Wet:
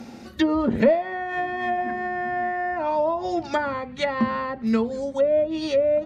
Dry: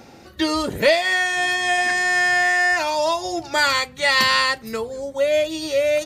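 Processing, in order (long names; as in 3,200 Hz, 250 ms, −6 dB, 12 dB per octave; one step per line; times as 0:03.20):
treble cut that deepens with the level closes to 780 Hz, closed at −16.5 dBFS
parametric band 230 Hz +14.5 dB 0.3 octaves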